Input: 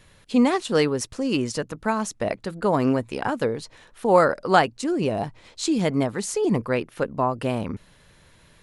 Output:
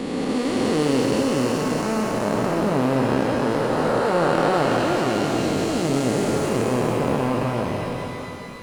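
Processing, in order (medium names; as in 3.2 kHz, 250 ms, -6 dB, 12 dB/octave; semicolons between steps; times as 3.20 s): spectral blur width 1020 ms; pitch-shifted reverb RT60 2.6 s, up +12 st, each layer -8 dB, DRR 3.5 dB; trim +7.5 dB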